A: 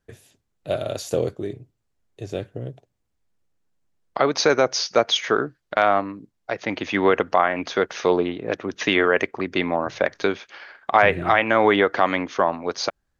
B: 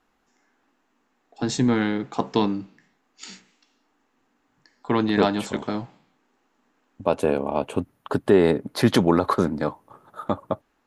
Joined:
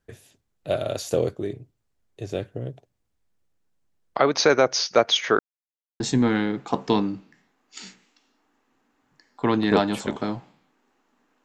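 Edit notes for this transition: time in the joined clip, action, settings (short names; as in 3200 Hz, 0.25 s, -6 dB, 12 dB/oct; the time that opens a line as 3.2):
A
5.39–6 mute
6 switch to B from 1.46 s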